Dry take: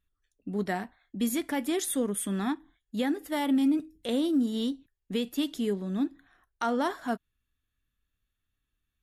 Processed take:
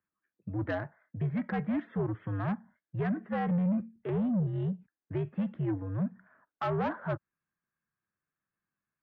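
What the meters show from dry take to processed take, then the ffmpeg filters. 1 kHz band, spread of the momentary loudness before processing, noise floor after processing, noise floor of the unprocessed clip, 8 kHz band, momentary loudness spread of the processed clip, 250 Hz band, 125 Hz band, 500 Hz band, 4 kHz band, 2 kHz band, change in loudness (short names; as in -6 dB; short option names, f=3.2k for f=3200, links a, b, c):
-3.0 dB, 9 LU, under -85 dBFS, -83 dBFS, under -40 dB, 9 LU, -4.5 dB, n/a, -3.5 dB, under -15 dB, -3.0 dB, -3.0 dB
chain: -af "acontrast=50,highpass=f=200:t=q:w=0.5412,highpass=f=200:t=q:w=1.307,lowpass=f=2.1k:t=q:w=0.5176,lowpass=f=2.1k:t=q:w=0.7071,lowpass=f=2.1k:t=q:w=1.932,afreqshift=-89,asoftclip=type=tanh:threshold=-19.5dB,volume=-5dB"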